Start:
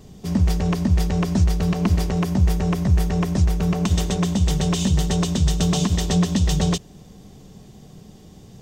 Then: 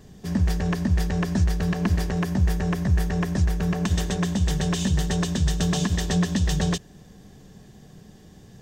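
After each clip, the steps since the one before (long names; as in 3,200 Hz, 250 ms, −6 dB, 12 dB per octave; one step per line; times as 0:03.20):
parametric band 1,700 Hz +12 dB 0.22 octaves
level −3.5 dB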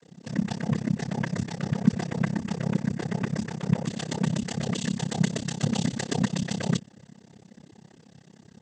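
comb filter 5.2 ms, depth 52%
cochlear-implant simulation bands 16
amplitude modulation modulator 33 Hz, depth 95%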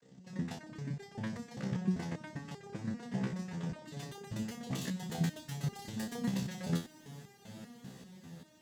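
phase distortion by the signal itself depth 0.26 ms
feedback delay with all-pass diffusion 943 ms, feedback 56%, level −11.5 dB
step-sequenced resonator 5.1 Hz 65–400 Hz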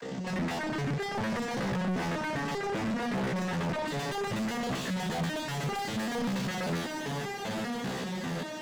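mid-hump overdrive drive 42 dB, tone 1,600 Hz, clips at −21 dBFS
level −2.5 dB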